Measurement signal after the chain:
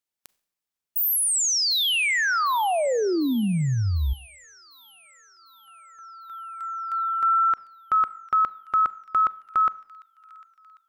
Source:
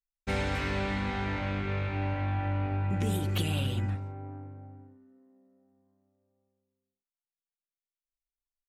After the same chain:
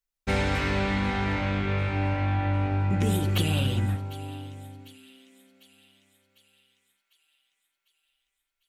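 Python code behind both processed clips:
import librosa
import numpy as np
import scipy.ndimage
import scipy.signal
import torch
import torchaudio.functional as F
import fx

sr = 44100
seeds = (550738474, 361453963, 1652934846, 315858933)

p1 = x + fx.echo_wet_highpass(x, sr, ms=750, feedback_pct=57, hz=2500.0, wet_db=-15, dry=0)
p2 = fx.rev_schroeder(p1, sr, rt60_s=0.61, comb_ms=30, drr_db=19.5)
y = p2 * librosa.db_to_amplitude(5.0)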